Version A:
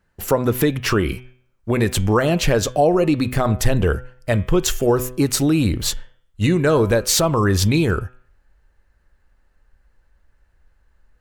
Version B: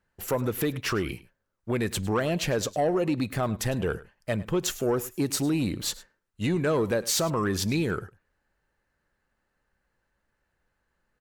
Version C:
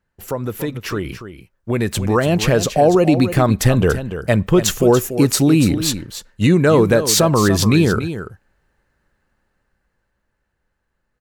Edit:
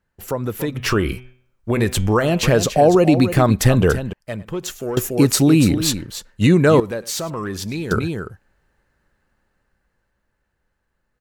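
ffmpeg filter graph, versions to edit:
-filter_complex "[1:a]asplit=2[a][b];[2:a]asplit=4[c][d][e][f];[c]atrim=end=0.772[g];[0:a]atrim=start=0.768:end=2.432[h];[d]atrim=start=2.428:end=4.132[i];[a]atrim=start=4.128:end=4.972[j];[e]atrim=start=4.968:end=6.802[k];[b]atrim=start=6.798:end=7.912[l];[f]atrim=start=7.908[m];[g][h]acrossfade=d=0.004:c1=hsin:c2=hsin[n];[n][i]acrossfade=d=0.004:c1=hsin:c2=hsin[o];[o][j]acrossfade=d=0.004:c1=hsin:c2=hsin[p];[p][k]acrossfade=d=0.004:c1=hsin:c2=hsin[q];[q][l]acrossfade=d=0.004:c1=hsin:c2=hsin[r];[r][m]acrossfade=d=0.004:c1=hsin:c2=hsin"

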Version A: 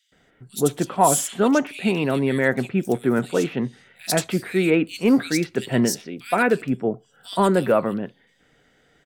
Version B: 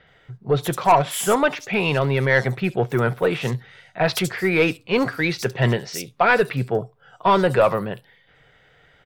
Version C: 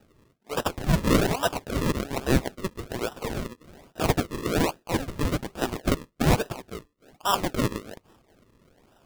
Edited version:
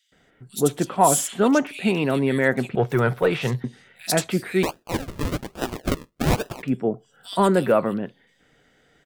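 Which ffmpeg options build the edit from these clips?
-filter_complex "[0:a]asplit=3[a][b][c];[a]atrim=end=2.752[d];[1:a]atrim=start=2.748:end=3.642[e];[b]atrim=start=3.638:end=4.632[f];[2:a]atrim=start=4.628:end=6.632[g];[c]atrim=start=6.628[h];[d][e]acrossfade=d=0.004:c1=hsin:c2=hsin[i];[i][f]acrossfade=d=0.004:c1=hsin:c2=hsin[j];[j][g]acrossfade=d=0.004:c1=hsin:c2=hsin[k];[k][h]acrossfade=d=0.004:c1=hsin:c2=hsin"

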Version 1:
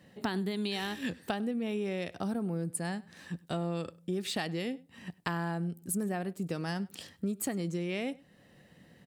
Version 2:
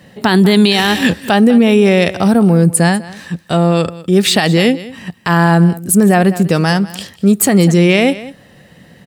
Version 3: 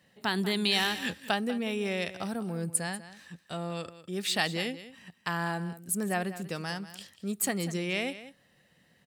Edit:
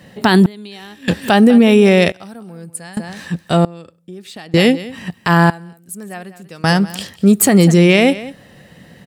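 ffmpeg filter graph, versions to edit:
-filter_complex "[0:a]asplit=2[a][b];[2:a]asplit=2[c][d];[1:a]asplit=5[e][f][g][h][i];[e]atrim=end=0.462[j];[a]atrim=start=0.458:end=1.082[k];[f]atrim=start=1.078:end=2.122[l];[c]atrim=start=2.118:end=2.972[m];[g]atrim=start=2.968:end=3.652[n];[b]atrim=start=3.648:end=4.542[o];[h]atrim=start=4.538:end=5.502[p];[d]atrim=start=5.498:end=6.642[q];[i]atrim=start=6.638[r];[j][k]acrossfade=d=0.004:c1=hsin:c2=hsin[s];[s][l]acrossfade=d=0.004:c1=hsin:c2=hsin[t];[t][m]acrossfade=d=0.004:c1=hsin:c2=hsin[u];[u][n]acrossfade=d=0.004:c1=hsin:c2=hsin[v];[v][o]acrossfade=d=0.004:c1=hsin:c2=hsin[w];[w][p]acrossfade=d=0.004:c1=hsin:c2=hsin[x];[x][q]acrossfade=d=0.004:c1=hsin:c2=hsin[y];[y][r]acrossfade=d=0.004:c1=hsin:c2=hsin"

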